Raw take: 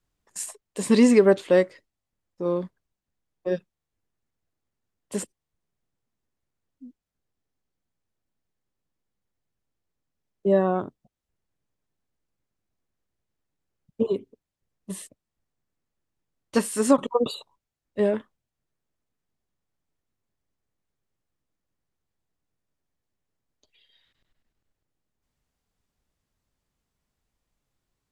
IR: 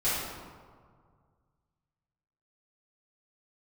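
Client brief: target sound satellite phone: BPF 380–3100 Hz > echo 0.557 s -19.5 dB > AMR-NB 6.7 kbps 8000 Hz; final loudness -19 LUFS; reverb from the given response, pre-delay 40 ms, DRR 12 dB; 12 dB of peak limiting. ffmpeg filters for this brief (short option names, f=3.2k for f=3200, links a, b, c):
-filter_complex "[0:a]alimiter=limit=-17dB:level=0:latency=1,asplit=2[a][b];[1:a]atrim=start_sample=2205,adelay=40[c];[b][c]afir=irnorm=-1:irlink=0,volume=-22.5dB[d];[a][d]amix=inputs=2:normalize=0,highpass=380,lowpass=3.1k,aecho=1:1:557:0.106,volume=15dB" -ar 8000 -c:a libopencore_amrnb -b:a 6700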